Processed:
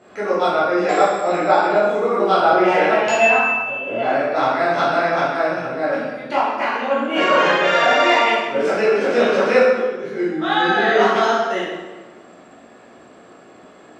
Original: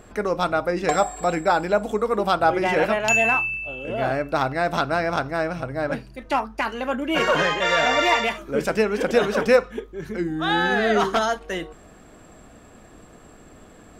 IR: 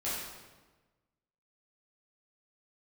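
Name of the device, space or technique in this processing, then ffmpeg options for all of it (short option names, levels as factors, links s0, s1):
supermarket ceiling speaker: -filter_complex "[0:a]highpass=250,lowpass=5600[s0];[1:a]atrim=start_sample=2205[s1];[s0][s1]afir=irnorm=-1:irlink=0"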